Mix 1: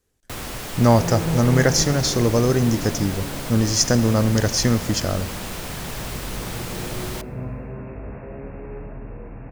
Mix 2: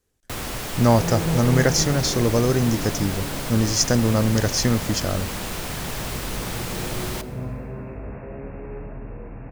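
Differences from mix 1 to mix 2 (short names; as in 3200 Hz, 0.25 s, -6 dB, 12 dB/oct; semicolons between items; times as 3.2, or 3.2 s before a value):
speech: send -9.0 dB; first sound: send +11.0 dB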